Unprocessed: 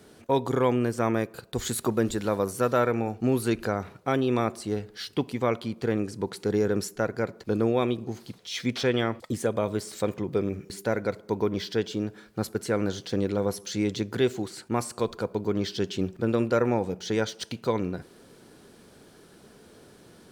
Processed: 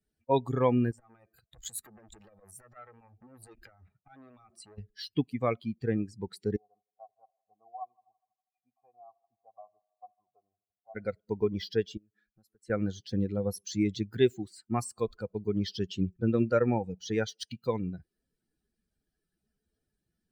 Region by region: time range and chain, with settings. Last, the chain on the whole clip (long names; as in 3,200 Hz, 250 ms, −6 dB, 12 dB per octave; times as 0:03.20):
0:00.91–0:04.78: high-shelf EQ 6,200 Hz −3 dB + downward compressor 20 to 1, threshold −27 dBFS + saturating transformer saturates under 2,000 Hz
0:06.56–0:10.95: formant resonators in series a + echo machine with several playback heads 81 ms, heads first and second, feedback 70%, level −17.5 dB
0:11.97–0:12.70: downward compressor 3 to 1, threshold −44 dBFS + low-shelf EQ 170 Hz −5.5 dB + highs frequency-modulated by the lows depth 0.18 ms
whole clip: spectral dynamics exaggerated over time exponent 2; low-shelf EQ 430 Hz +3.5 dB